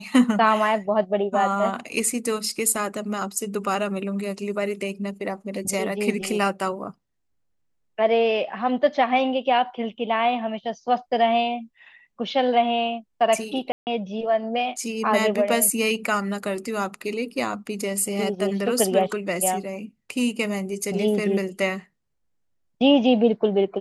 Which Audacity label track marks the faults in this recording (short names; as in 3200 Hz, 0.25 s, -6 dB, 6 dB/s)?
13.720000	13.870000	gap 0.149 s